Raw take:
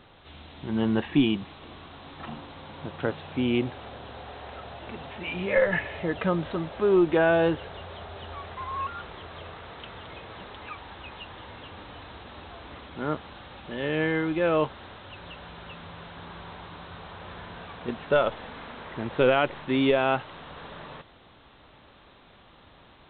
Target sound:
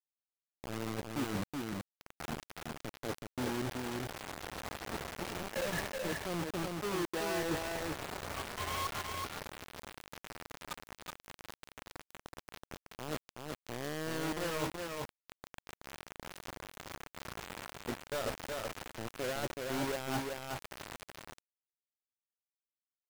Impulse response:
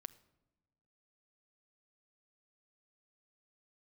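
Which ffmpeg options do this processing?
-af "lowpass=1.3k,areverse,acompressor=threshold=-34dB:ratio=16,areverse,acrusher=bits=5:mix=0:aa=0.000001,aecho=1:1:375:0.668,volume=-1dB"

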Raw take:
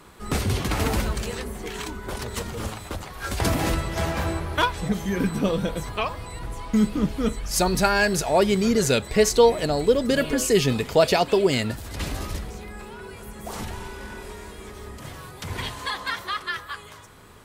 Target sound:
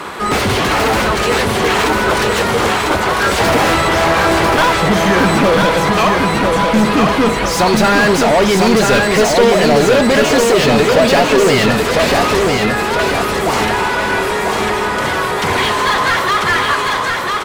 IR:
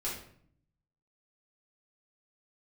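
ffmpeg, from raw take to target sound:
-filter_complex "[0:a]asplit=2[a][b];[b]highpass=f=720:p=1,volume=34dB,asoftclip=type=tanh:threshold=-5.5dB[c];[a][c]amix=inputs=2:normalize=0,lowpass=f=2k:p=1,volume=-6dB,aecho=1:1:997|1994|2991|3988|4985|5982:0.668|0.294|0.129|0.0569|0.0251|0.011,volume=1dB"

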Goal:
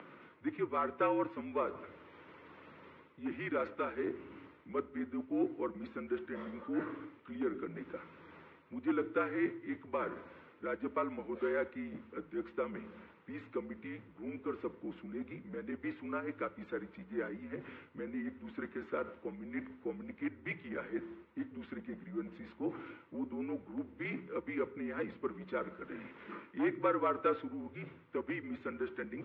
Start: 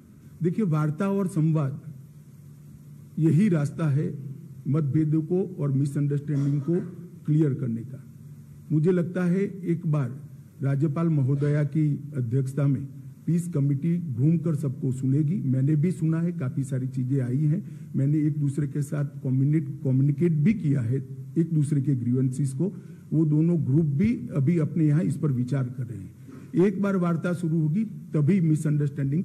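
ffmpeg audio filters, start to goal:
-af "areverse,acompressor=threshold=-35dB:ratio=5,areverse,highpass=f=470:t=q:w=0.5412,highpass=f=470:t=q:w=1.307,lowpass=f=3.1k:t=q:w=0.5176,lowpass=f=3.1k:t=q:w=0.7071,lowpass=f=3.1k:t=q:w=1.932,afreqshift=-62,volume=13.5dB"

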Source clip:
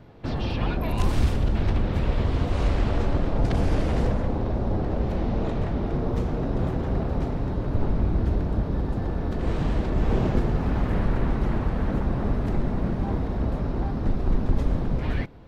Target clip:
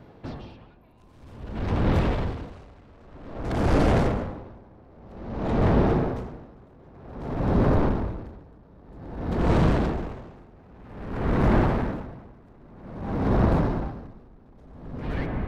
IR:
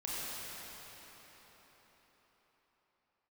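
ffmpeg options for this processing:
-filter_complex "[0:a]lowshelf=f=73:g=-9,dynaudnorm=f=750:g=5:m=11.5dB,asoftclip=type=tanh:threshold=-19.5dB,asplit=2[a][b];[1:a]atrim=start_sample=2205,lowpass=2.2k[c];[b][c]afir=irnorm=-1:irlink=0,volume=-5dB[d];[a][d]amix=inputs=2:normalize=0,aeval=exprs='val(0)*pow(10,-32*(0.5-0.5*cos(2*PI*0.52*n/s))/20)':c=same"

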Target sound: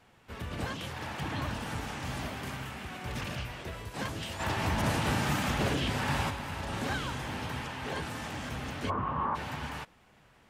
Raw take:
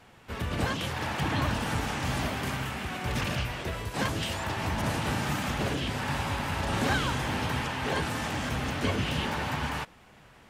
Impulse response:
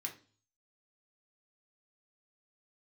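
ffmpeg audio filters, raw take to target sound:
-filter_complex "[0:a]asplit=3[a][b][c];[a]afade=t=out:st=4.39:d=0.02[d];[b]acontrast=79,afade=t=in:st=4.39:d=0.02,afade=t=out:st=6.29:d=0.02[e];[c]afade=t=in:st=6.29:d=0.02[f];[d][e][f]amix=inputs=3:normalize=0,asplit=3[g][h][i];[g]afade=t=out:st=8.89:d=0.02[j];[h]lowpass=f=1.1k:t=q:w=10,afade=t=in:st=8.89:d=0.02,afade=t=out:st=9.34:d=0.02[k];[i]afade=t=in:st=9.34:d=0.02[l];[j][k][l]amix=inputs=3:normalize=0,volume=-6.5dB"

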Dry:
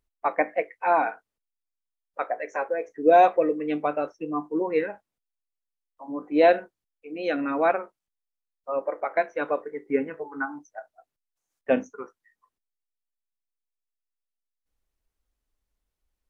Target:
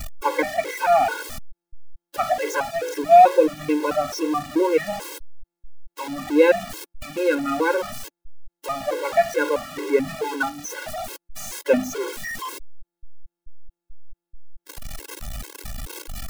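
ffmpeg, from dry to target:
-filter_complex "[0:a]aeval=exprs='val(0)+0.5*0.0376*sgn(val(0))':c=same,acrossover=split=370|3000[a][b][c];[a]acompressor=threshold=-24dB:ratio=4[d];[d][b][c]amix=inputs=3:normalize=0,afftfilt=real='re*gt(sin(2*PI*2.3*pts/sr)*(1-2*mod(floor(b*sr/1024/280),2)),0)':imag='im*gt(sin(2*PI*2.3*pts/sr)*(1-2*mod(floor(b*sr/1024/280),2)),0)':win_size=1024:overlap=0.75,volume=5.5dB"

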